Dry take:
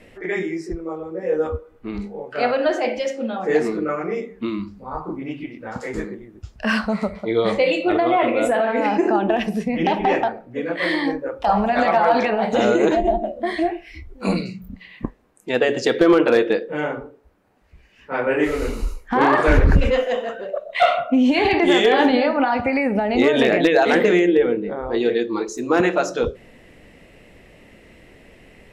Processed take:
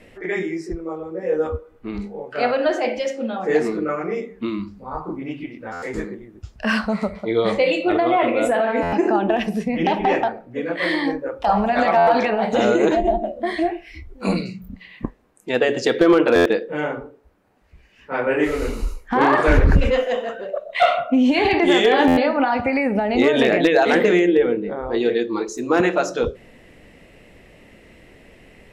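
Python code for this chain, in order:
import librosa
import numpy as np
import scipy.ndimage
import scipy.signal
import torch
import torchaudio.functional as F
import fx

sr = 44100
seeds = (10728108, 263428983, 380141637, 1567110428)

y = fx.buffer_glitch(x, sr, at_s=(5.72, 8.82, 11.97, 16.35, 22.07), block=512, repeats=8)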